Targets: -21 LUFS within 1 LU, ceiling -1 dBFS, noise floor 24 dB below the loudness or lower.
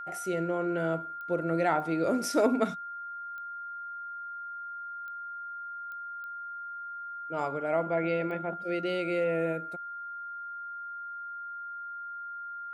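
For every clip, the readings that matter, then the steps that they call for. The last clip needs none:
clicks 7; steady tone 1400 Hz; tone level -37 dBFS; loudness -33.0 LUFS; peak -12.5 dBFS; loudness target -21.0 LUFS
-> de-click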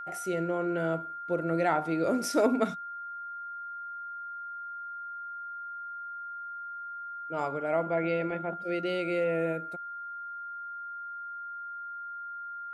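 clicks 0; steady tone 1400 Hz; tone level -37 dBFS
-> notch 1400 Hz, Q 30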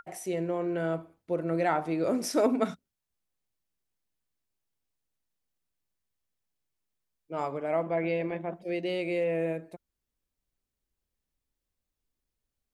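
steady tone none; loudness -30.5 LUFS; peak -12.5 dBFS; loudness target -21.0 LUFS
-> gain +9.5 dB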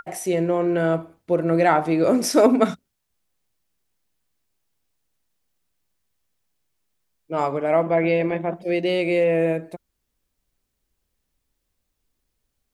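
loudness -21.0 LUFS; peak -3.0 dBFS; noise floor -77 dBFS

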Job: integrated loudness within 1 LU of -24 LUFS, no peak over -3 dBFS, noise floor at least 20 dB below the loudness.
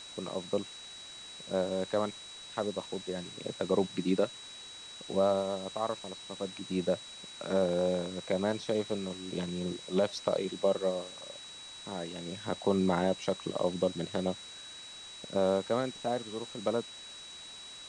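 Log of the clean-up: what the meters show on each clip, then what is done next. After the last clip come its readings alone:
steady tone 3900 Hz; tone level -46 dBFS; noise floor -48 dBFS; noise floor target -54 dBFS; loudness -33.5 LUFS; peak -13.0 dBFS; loudness target -24.0 LUFS
-> notch 3900 Hz, Q 30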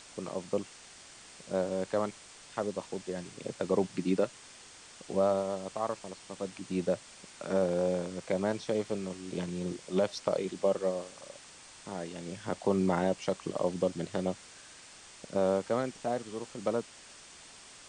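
steady tone none; noise floor -53 dBFS; noise floor target -54 dBFS
-> denoiser 6 dB, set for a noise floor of -53 dBFS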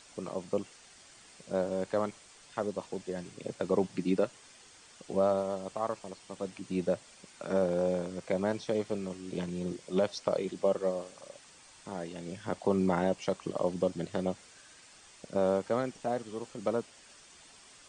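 noise floor -57 dBFS; loudness -33.5 LUFS; peak -13.5 dBFS; loudness target -24.0 LUFS
-> gain +9.5 dB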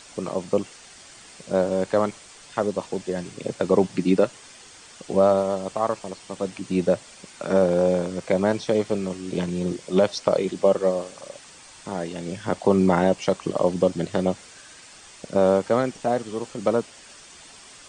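loudness -24.0 LUFS; peak -4.0 dBFS; noise floor -47 dBFS

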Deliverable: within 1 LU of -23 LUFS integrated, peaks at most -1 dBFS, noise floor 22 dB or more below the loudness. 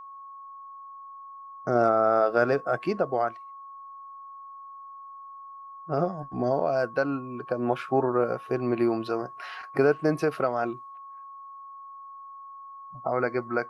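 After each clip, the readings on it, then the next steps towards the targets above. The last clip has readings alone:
steady tone 1100 Hz; tone level -41 dBFS; loudness -26.5 LUFS; peak -9.5 dBFS; loudness target -23.0 LUFS
-> notch 1100 Hz, Q 30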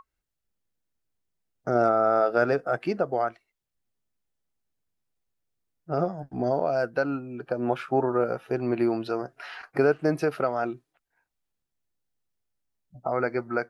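steady tone none; loudness -26.5 LUFS; peak -9.5 dBFS; loudness target -23.0 LUFS
-> gain +3.5 dB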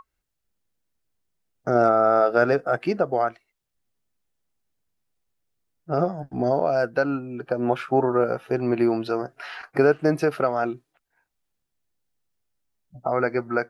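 loudness -23.0 LUFS; peak -6.0 dBFS; noise floor -80 dBFS

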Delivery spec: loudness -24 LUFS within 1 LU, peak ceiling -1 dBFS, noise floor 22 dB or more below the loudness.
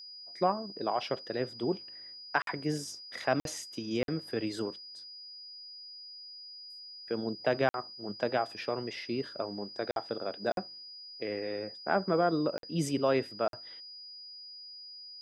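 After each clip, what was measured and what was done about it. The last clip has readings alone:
dropouts 8; longest dropout 52 ms; steady tone 4900 Hz; tone level -45 dBFS; loudness -34.0 LUFS; peak -12.0 dBFS; loudness target -24.0 LUFS
-> interpolate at 2.42/3.4/4.03/7.69/9.91/10.52/12.58/13.48, 52 ms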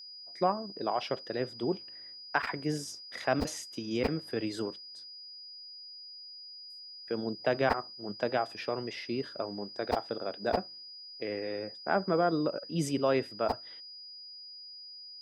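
dropouts 0; steady tone 4900 Hz; tone level -45 dBFS
-> notch 4900 Hz, Q 30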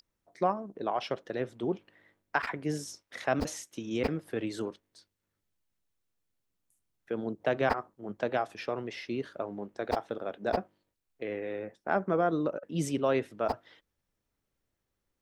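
steady tone none; loudness -33.5 LUFS; peak -12.0 dBFS; loudness target -24.0 LUFS
-> gain +9.5 dB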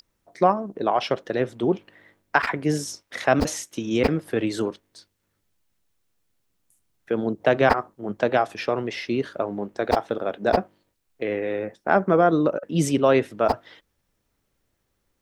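loudness -24.0 LUFS; peak -2.5 dBFS; noise floor -74 dBFS

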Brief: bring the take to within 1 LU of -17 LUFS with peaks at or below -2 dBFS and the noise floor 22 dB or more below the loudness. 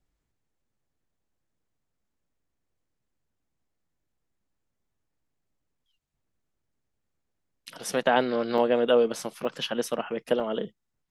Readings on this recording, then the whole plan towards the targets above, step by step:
dropouts 3; longest dropout 3.0 ms; loudness -26.5 LUFS; peak -8.5 dBFS; loudness target -17.0 LUFS
-> interpolate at 8.58/9.45/10.4, 3 ms; gain +9.5 dB; limiter -2 dBFS

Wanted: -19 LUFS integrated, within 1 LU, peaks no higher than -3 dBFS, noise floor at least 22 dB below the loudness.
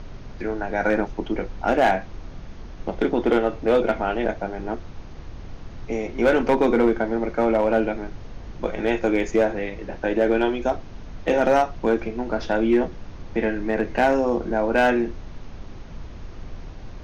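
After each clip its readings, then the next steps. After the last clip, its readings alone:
clipped 0.6%; flat tops at -11.0 dBFS; noise floor -39 dBFS; noise floor target -45 dBFS; loudness -23.0 LUFS; peak -11.0 dBFS; loudness target -19.0 LUFS
-> clip repair -11 dBFS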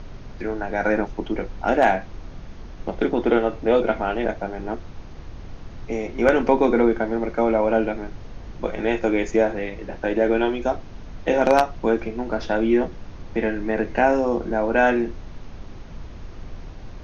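clipped 0.0%; noise floor -39 dBFS; noise floor target -45 dBFS
-> noise print and reduce 6 dB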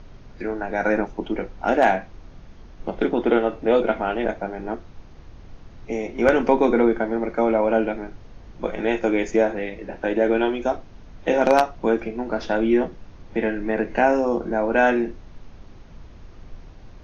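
noise floor -44 dBFS; noise floor target -45 dBFS
-> noise print and reduce 6 dB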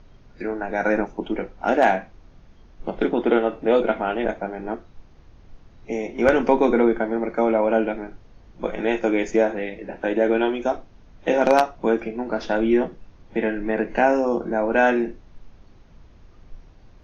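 noise floor -50 dBFS; loudness -22.5 LUFS; peak -2.0 dBFS; loudness target -19.0 LUFS
-> gain +3.5 dB; limiter -3 dBFS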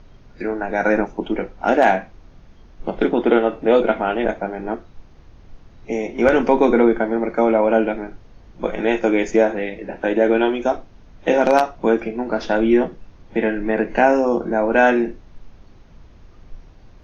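loudness -19.0 LUFS; peak -3.0 dBFS; noise floor -47 dBFS

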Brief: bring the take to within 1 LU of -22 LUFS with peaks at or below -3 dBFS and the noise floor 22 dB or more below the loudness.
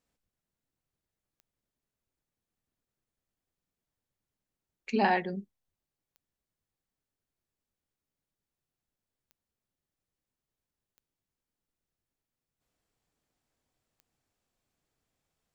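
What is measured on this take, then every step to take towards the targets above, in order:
clicks 5; loudness -29.5 LUFS; peak -12.5 dBFS; loudness target -22.0 LUFS
-> de-click; gain +7.5 dB

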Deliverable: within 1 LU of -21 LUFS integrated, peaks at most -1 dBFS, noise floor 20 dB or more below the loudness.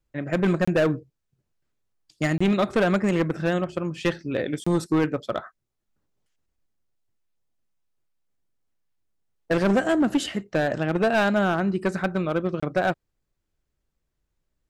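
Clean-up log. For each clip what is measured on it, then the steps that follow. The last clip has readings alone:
clipped 1.4%; flat tops at -15.5 dBFS; dropouts 4; longest dropout 25 ms; loudness -24.5 LUFS; peak -15.5 dBFS; loudness target -21.0 LUFS
-> clip repair -15.5 dBFS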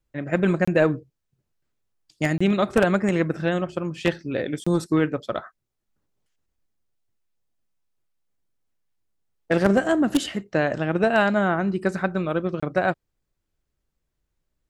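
clipped 0.0%; dropouts 4; longest dropout 25 ms
-> interpolate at 0.65/2.38/4.64/12.6, 25 ms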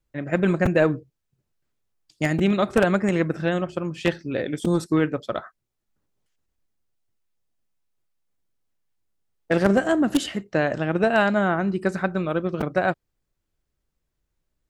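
dropouts 0; loudness -23.0 LUFS; peak -6.5 dBFS; loudness target -21.0 LUFS
-> gain +2 dB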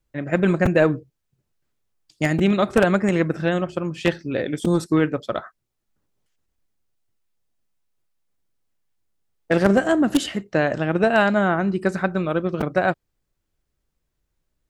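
loudness -21.0 LUFS; peak -4.5 dBFS; noise floor -77 dBFS

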